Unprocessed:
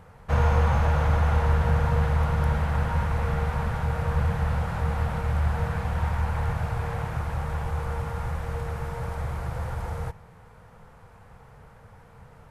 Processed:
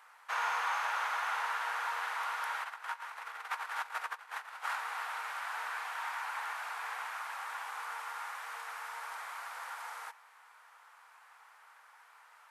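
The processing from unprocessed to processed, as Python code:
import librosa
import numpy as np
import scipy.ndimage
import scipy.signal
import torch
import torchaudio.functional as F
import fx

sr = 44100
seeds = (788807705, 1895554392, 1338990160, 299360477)

y = fx.over_compress(x, sr, threshold_db=-29.0, ratio=-0.5, at=(2.63, 4.75), fade=0.02)
y = scipy.signal.sosfilt(scipy.signal.butter(4, 1000.0, 'highpass', fs=sr, output='sos'), y)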